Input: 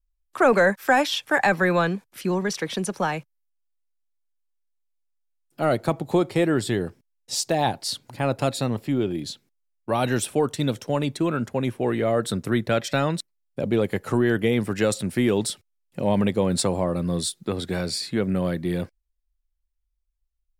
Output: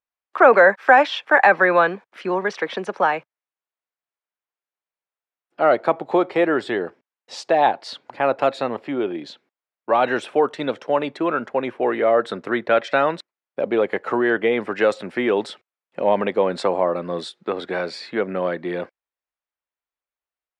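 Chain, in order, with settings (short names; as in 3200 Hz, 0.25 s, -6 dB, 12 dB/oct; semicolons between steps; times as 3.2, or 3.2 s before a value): BPF 480–2100 Hz; gain +8 dB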